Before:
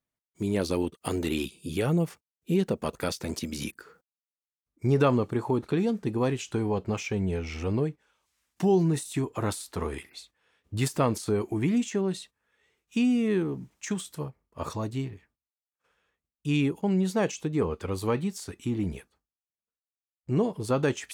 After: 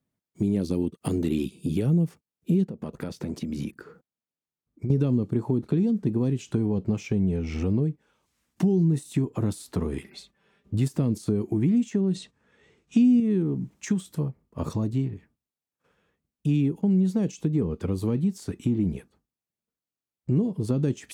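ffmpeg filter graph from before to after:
ffmpeg -i in.wav -filter_complex "[0:a]asettb=1/sr,asplit=3[link_01][link_02][link_03];[link_01]atrim=end=2.654[link_04];[link_02]atrim=start=2.65:end=4.9,asetpts=PTS-STARTPTS,afade=type=in:duration=0.004:curve=qsin,afade=type=out:start_time=2.246:duration=0.004:curve=qsin,highshelf=frequency=3900:gain=-7,acompressor=threshold=-38dB:ratio=4:attack=3.2:release=140:knee=1:detection=peak[link_05];[link_03]atrim=start=4.896[link_06];[link_04][link_05]acrossfade=duration=0.004:curve1=hsin:curve2=qsin[link_07];[link_07][link_06]acrossfade=duration=0.004:curve1=qsin:curve2=hsin,asettb=1/sr,asplit=3[link_08][link_09][link_10];[link_08]atrim=end=10.044[link_11];[link_09]atrim=start=10.04:end=10.74,asetpts=PTS-STARTPTS,afade=type=in:duration=0.004:curve=qsin,afade=type=out:start_time=0.696:duration=0.004:curve=qsin,highshelf=frequency=7700:gain=-6.5,aecho=1:1:5.1:0.62,atrim=end_sample=30870[link_12];[link_10]atrim=start=10.736[link_13];[link_11][link_12]acrossfade=duration=0.004:curve1=hsin:curve2=qsin[link_14];[link_14][link_13]acrossfade=duration=0.004:curve1=qsin:curve2=hsin,asettb=1/sr,asplit=3[link_15][link_16][link_17];[link_15]atrim=end=12.154[link_18];[link_16]atrim=start=12.15:end=13.2,asetpts=PTS-STARTPTS,afade=type=in:duration=0.004:curve=qsin,afade=type=out:start_time=1.046:duration=0.004:curve=qsin,lowpass=frequency=8400:width=0.5412,lowpass=frequency=8400:width=1.3066,acontrast=46[link_19];[link_17]atrim=start=13.196[link_20];[link_18][link_19]acrossfade=duration=0.004:curve1=hsin:curve2=qsin[link_21];[link_21][link_20]acrossfade=duration=0.004:curve1=qsin:curve2=hsin,acrossover=split=410|3000[link_22][link_23][link_24];[link_23]acompressor=threshold=-37dB:ratio=6[link_25];[link_22][link_25][link_24]amix=inputs=3:normalize=0,equalizer=frequency=180:width=0.44:gain=14,acompressor=threshold=-27dB:ratio=2" out.wav

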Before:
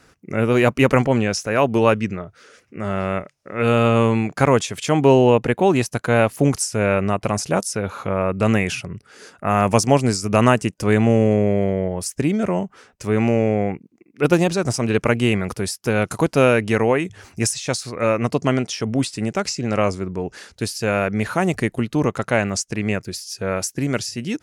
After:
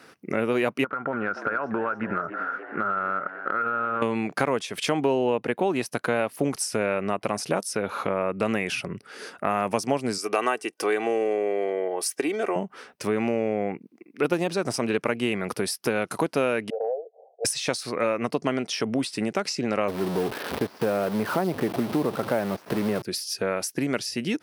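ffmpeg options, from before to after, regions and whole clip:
ffmpeg -i in.wav -filter_complex "[0:a]asettb=1/sr,asplit=3[link_01][link_02][link_03];[link_01]atrim=end=0.844[link_04];[link_02]atrim=start=0.84:end=4.02,asetpts=PTS-STARTPTS,afade=type=in:duration=0.004:curve=qsin,afade=type=out:start_time=3.176:duration=0.004:curve=qsin,lowpass=frequency=1400:width_type=q:width=15,acompressor=threshold=-22dB:ratio=16:attack=3.2:release=140:knee=1:detection=peak,asplit=7[link_05][link_06][link_07][link_08][link_09][link_10][link_11];[link_06]adelay=289,afreqshift=90,volume=-15.5dB[link_12];[link_07]adelay=578,afreqshift=180,volume=-19.7dB[link_13];[link_08]adelay=867,afreqshift=270,volume=-23.8dB[link_14];[link_09]adelay=1156,afreqshift=360,volume=-28dB[link_15];[link_10]adelay=1445,afreqshift=450,volume=-32.1dB[link_16];[link_11]adelay=1734,afreqshift=540,volume=-36.3dB[link_17];[link_05][link_12][link_13][link_14][link_15][link_16][link_17]amix=inputs=7:normalize=0,atrim=end_sample=140238[link_18];[link_03]atrim=start=4.016[link_19];[link_04][link_18]acrossfade=duration=0.004:curve1=hsin:curve2=qsin[link_20];[link_20][link_19]acrossfade=duration=0.004:curve1=qsin:curve2=hsin,asettb=1/sr,asplit=3[link_21][link_22][link_23];[link_21]atrim=end=10.184[link_24];[link_22]atrim=start=10.18:end=12.56,asetpts=PTS-STARTPTS,afade=type=in:duration=0.004:curve=qsin,afade=type=out:start_time=2.376:duration=0.004:curve=qsin,highpass=390,aecho=1:1:2.6:0.49,atrim=end_sample=104958[link_25];[link_23]atrim=start=12.556[link_26];[link_24][link_25]acrossfade=duration=0.004:curve1=hsin:curve2=qsin[link_27];[link_27][link_26]acrossfade=duration=0.004:curve1=qsin:curve2=hsin,asettb=1/sr,asplit=3[link_28][link_29][link_30];[link_28]atrim=end=16.704[link_31];[link_29]atrim=start=16.7:end=17.45,asetpts=PTS-STARTPTS,afade=type=in:duration=0.004:curve=qsin,afade=type=out:start_time=0.746:duration=0.004:curve=qsin,asuperpass=centerf=590:order=12:qfactor=1.8,acompressor=threshold=-25dB:ratio=6:attack=3.2:release=140:knee=1:detection=peak[link_32];[link_30]atrim=start=17.446[link_33];[link_31][link_32]acrossfade=duration=0.004:curve1=hsin:curve2=qsin[link_34];[link_34][link_33]acrossfade=duration=0.004:curve1=qsin:curve2=hsin,asettb=1/sr,asplit=3[link_35][link_36][link_37];[link_35]atrim=end=19.884[link_38];[link_36]atrim=start=19.88:end=23.02,asetpts=PTS-STARTPTS,afade=type=in:duration=0.004:curve=qsin,afade=type=out:start_time=3.136:duration=0.004:curve=qsin,aeval=exprs='val(0)+0.5*0.075*sgn(val(0))':channel_layout=same,lowpass=1100,acrusher=bits=6:dc=4:mix=0:aa=0.000001[link_39];[link_37]atrim=start=23.016[link_40];[link_38][link_39]acrossfade=duration=0.004:curve1=hsin:curve2=qsin[link_41];[link_41][link_40]acrossfade=duration=0.004:curve1=qsin:curve2=hsin,highpass=220,equalizer=frequency=7000:width_type=o:width=0.42:gain=-9.5,acompressor=threshold=-28dB:ratio=3,volume=4dB" out.wav

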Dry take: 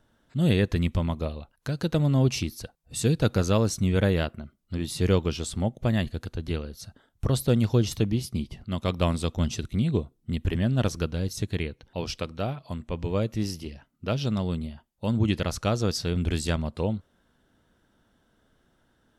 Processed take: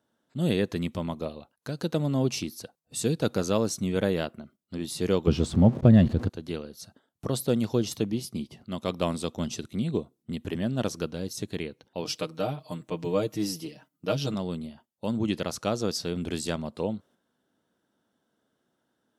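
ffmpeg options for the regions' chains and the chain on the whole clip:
ffmpeg -i in.wav -filter_complex "[0:a]asettb=1/sr,asplit=3[link_01][link_02][link_03];[link_01]atrim=end=5.274[link_04];[link_02]atrim=start=5.27:end=6.29,asetpts=PTS-STARTPTS,afade=type=in:duration=0.004:curve=qsin,afade=type=out:start_time=1.016:duration=0.004:curve=qsin,aeval=exprs='val(0)+0.5*0.0106*sgn(val(0))':channel_layout=same,aemphasis=mode=reproduction:type=riaa,acontrast=27[link_05];[link_03]atrim=start=6.286[link_06];[link_04][link_05]acrossfade=duration=0.004:curve1=hsin:curve2=qsin[link_07];[link_07][link_06]acrossfade=duration=0.004:curve1=qsin:curve2=hsin,asettb=1/sr,asplit=3[link_08][link_09][link_10];[link_08]atrim=end=12.054[link_11];[link_09]atrim=start=12.05:end=14.34,asetpts=PTS-STARTPTS,afade=type=in:duration=0.004:curve=qsin,afade=type=out:start_time=2.286:duration=0.004:curve=qsin,highshelf=frequency=10000:gain=7.5,aecho=1:1:6.5:0.85,atrim=end_sample=100989[link_12];[link_10]atrim=start=14.336[link_13];[link_11][link_12]acrossfade=duration=0.004:curve1=hsin:curve2=qsin[link_14];[link_14][link_13]acrossfade=duration=0.004:curve1=qsin:curve2=hsin,highpass=190,agate=range=-6dB:threshold=-55dB:ratio=16:detection=peak,equalizer=frequency=2000:width=0.83:gain=-4.5" out.wav

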